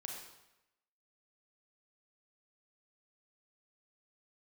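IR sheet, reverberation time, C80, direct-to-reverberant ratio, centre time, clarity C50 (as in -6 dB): 0.95 s, 4.5 dB, 0.0 dB, 51 ms, 2.0 dB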